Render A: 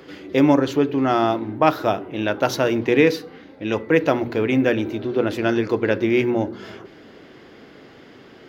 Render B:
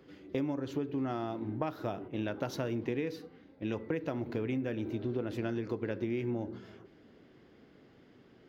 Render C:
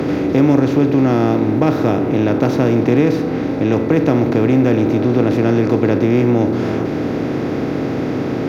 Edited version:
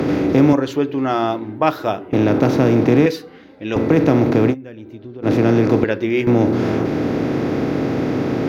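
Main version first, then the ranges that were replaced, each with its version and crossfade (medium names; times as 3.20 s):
C
0.53–2.13 s: from A
3.06–3.76 s: from A
4.52–5.25 s: from B, crossfade 0.06 s
5.84–6.27 s: from A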